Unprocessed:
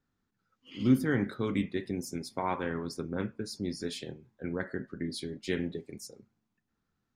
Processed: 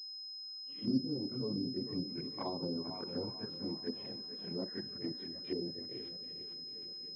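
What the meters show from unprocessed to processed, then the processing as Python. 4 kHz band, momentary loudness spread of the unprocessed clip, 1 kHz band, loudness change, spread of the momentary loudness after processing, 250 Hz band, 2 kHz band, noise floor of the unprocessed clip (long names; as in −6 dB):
+5.5 dB, 15 LU, −10.5 dB, −6.0 dB, 7 LU, −6.5 dB, −19.5 dB, −82 dBFS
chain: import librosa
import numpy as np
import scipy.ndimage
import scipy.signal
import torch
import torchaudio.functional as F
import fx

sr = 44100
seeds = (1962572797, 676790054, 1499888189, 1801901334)

p1 = fx.env_flanger(x, sr, rest_ms=8.9, full_db=-29.5)
p2 = fx.level_steps(p1, sr, step_db=12)
p3 = scipy.signal.sosfilt(scipy.signal.butter(2, 130.0, 'highpass', fs=sr, output='sos'), p2)
p4 = fx.echo_swing(p3, sr, ms=761, ratio=1.5, feedback_pct=43, wet_db=-14.5)
p5 = fx.chorus_voices(p4, sr, voices=4, hz=0.53, base_ms=25, depth_ms=4.8, mix_pct=70)
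p6 = p5 + fx.echo_feedback(p5, sr, ms=443, feedback_pct=43, wet_db=-13.5, dry=0)
p7 = fx.env_lowpass_down(p6, sr, base_hz=480.0, full_db=-34.5)
p8 = fx.pwm(p7, sr, carrier_hz=5100.0)
y = p8 * librosa.db_to_amplitude(2.0)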